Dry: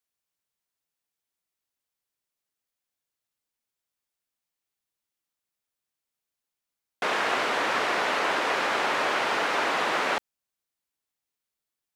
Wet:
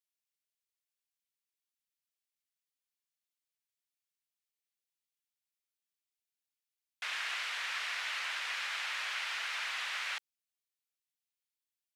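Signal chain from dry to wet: Chebyshev high-pass 2300 Hz, order 2; gain -5.5 dB

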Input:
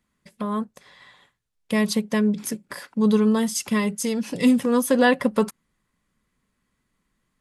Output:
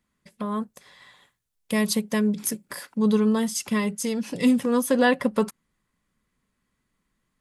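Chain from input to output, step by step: 0.61–2.98 high shelf 7700 Hz +10 dB; gain -2 dB

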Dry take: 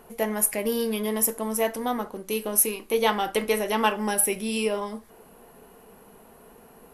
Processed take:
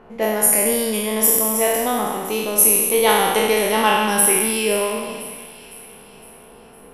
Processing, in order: spectral trails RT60 1.63 s; low-pass opened by the level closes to 2500 Hz, open at -18 dBFS; on a send: split-band echo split 2000 Hz, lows 0.106 s, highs 0.509 s, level -14 dB; on the sum: gain +3 dB

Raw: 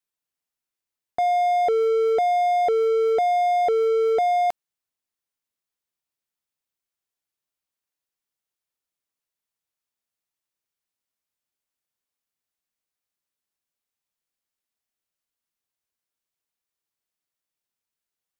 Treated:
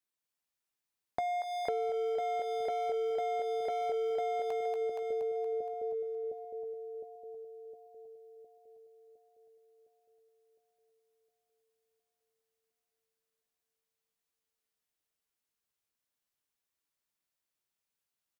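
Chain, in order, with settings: doubler 16 ms -10 dB; split-band echo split 500 Hz, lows 0.71 s, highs 0.235 s, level -3 dB; compressor 6:1, threshold -28 dBFS, peak gain reduction 12.5 dB; gain -3.5 dB

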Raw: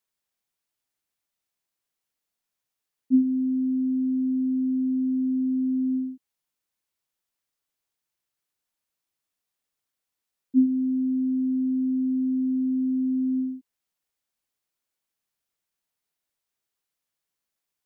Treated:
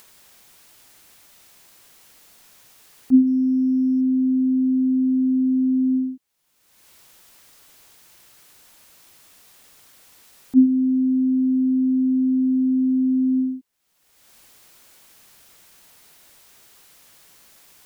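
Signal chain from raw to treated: upward compressor, threshold -35 dBFS; 3.27–4.01 decimation joined by straight lines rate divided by 8×; gain +5.5 dB

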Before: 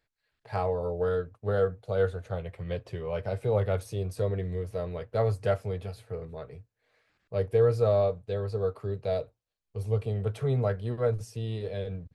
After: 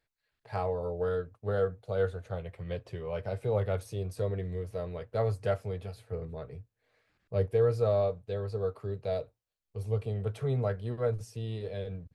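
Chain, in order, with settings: 6.12–7.47 low shelf 370 Hz +5.5 dB; gain -3 dB

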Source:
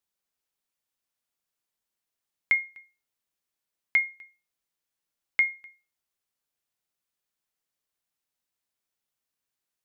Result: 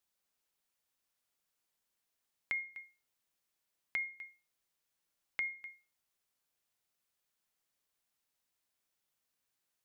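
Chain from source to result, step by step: notches 50/100/150/200/250/300/350/400/450 Hz; limiter -23 dBFS, peak gain reduction 10 dB; compressor 3:1, threshold -39 dBFS, peak gain reduction 9.5 dB; gain +1.5 dB

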